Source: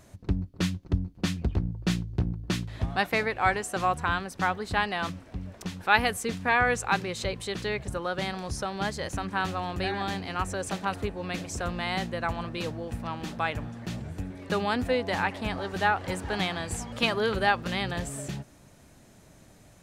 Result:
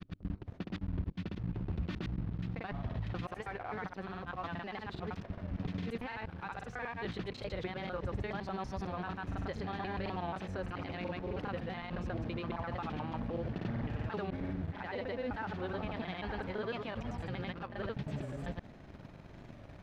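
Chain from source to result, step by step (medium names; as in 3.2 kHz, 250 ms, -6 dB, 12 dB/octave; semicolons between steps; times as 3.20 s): slices played last to first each 80 ms, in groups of 8; treble shelf 9.2 kHz +7 dB; reverse; compression 6:1, threshold -36 dBFS, peak gain reduction 19 dB; reverse; peak limiter -34.5 dBFS, peak gain reduction 14.5 dB; granulator, pitch spread up and down by 0 st; in parallel at -7.5 dB: word length cut 8-bit, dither none; on the sum: distance through air 310 m; warped record 45 rpm, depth 100 cents; trim +4.5 dB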